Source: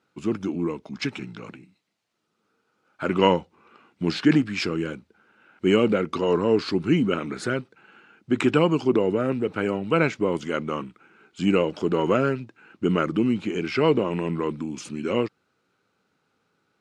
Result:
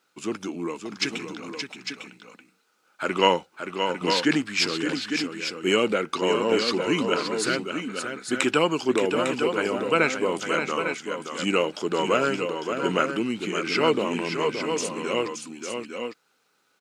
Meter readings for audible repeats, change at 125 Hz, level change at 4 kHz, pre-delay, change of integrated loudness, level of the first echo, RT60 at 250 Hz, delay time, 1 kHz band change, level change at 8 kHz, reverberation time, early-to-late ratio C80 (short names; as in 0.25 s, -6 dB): 2, -8.0 dB, +6.5 dB, none, -1.0 dB, -7.0 dB, none, 0.573 s, +3.0 dB, +11.0 dB, none, none